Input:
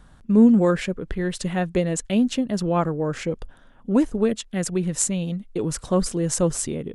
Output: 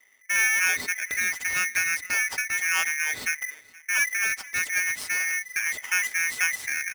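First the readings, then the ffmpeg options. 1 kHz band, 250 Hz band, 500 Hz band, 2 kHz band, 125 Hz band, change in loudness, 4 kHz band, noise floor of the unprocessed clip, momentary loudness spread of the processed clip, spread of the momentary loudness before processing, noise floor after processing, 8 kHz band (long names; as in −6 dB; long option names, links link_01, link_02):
−6.0 dB, below −30 dB, −26.5 dB, +16.0 dB, below −25 dB, −1.5 dB, +1.5 dB, −51 dBFS, 5 LU, 11 LU, −55 dBFS, +2.0 dB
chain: -filter_complex "[0:a]acrossover=split=6000[link_01][link_02];[link_02]acompressor=threshold=-37dB:ratio=4:attack=1:release=60[link_03];[link_01][link_03]amix=inputs=2:normalize=0,agate=range=-12dB:threshold=-46dB:ratio=16:detection=peak,highshelf=frequency=5000:gain=-10,bandreject=frequency=2000:width=12,aecho=1:1:5.8:0.48,acrossover=split=300|3000[link_04][link_05][link_06];[link_05]acompressor=threshold=-34dB:ratio=2[link_07];[link_04][link_07][link_06]amix=inputs=3:normalize=0,acrossover=split=310|990[link_08][link_09][link_10];[link_08]volume=27dB,asoftclip=hard,volume=-27dB[link_11];[link_11][link_09][link_10]amix=inputs=3:normalize=0,aecho=1:1:475|950:0.0708|0.012,aeval=exprs='val(0)*sgn(sin(2*PI*2000*n/s))':channel_layout=same"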